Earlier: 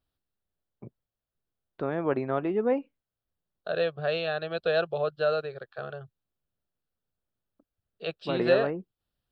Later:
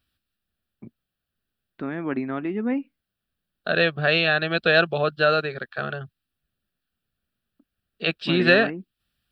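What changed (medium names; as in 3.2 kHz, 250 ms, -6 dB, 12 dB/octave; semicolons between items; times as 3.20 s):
second voice +10.5 dB; master: add graphic EQ 125/250/500/1000/2000 Hz -4/+10/-9/-3/+7 dB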